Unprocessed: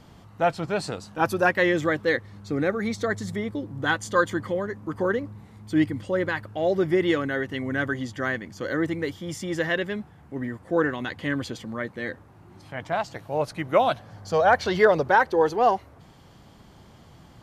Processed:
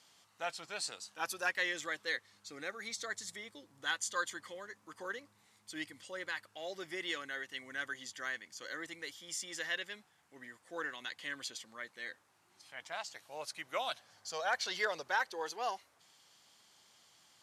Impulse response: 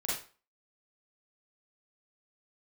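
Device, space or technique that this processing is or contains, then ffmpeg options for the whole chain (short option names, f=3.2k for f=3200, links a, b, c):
piezo pickup straight into a mixer: -af "lowpass=8.6k,aderivative,volume=2dB"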